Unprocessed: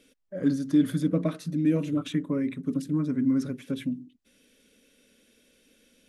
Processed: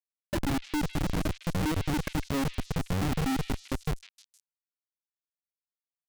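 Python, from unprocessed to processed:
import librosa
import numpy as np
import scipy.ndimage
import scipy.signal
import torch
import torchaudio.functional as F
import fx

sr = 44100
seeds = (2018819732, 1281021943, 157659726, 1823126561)

p1 = fx.pitch_trill(x, sr, semitones=-9.0, every_ms=116)
p2 = fx.highpass(p1, sr, hz=420.0, slope=6)
p3 = fx.notch(p2, sr, hz=3400.0, q=21.0)
p4 = fx.over_compress(p3, sr, threshold_db=-36.0, ratio=-0.5)
p5 = p3 + F.gain(torch.from_numpy(p4), 1.0).numpy()
p6 = fx.spec_topn(p5, sr, count=8)
p7 = fx.schmitt(p6, sr, flips_db=-27.5)
p8 = p7 + fx.echo_stepped(p7, sr, ms=155, hz=3100.0, octaves=0.7, feedback_pct=70, wet_db=-6.0, dry=0)
y = F.gain(torch.from_numpy(p8), 5.0).numpy()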